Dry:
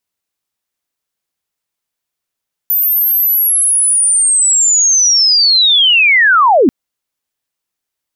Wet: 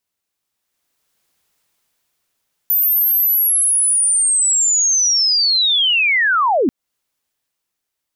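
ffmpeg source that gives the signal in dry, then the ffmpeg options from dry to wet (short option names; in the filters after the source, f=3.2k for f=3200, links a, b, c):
-f lavfi -i "aevalsrc='pow(10,(-9.5+4.5*t/3.99)/20)*sin(2*PI*(14000*t-13780*t*t/(2*3.99)))':d=3.99:s=44100"
-af "dynaudnorm=f=140:g=13:m=13dB,alimiter=limit=-12dB:level=0:latency=1:release=256"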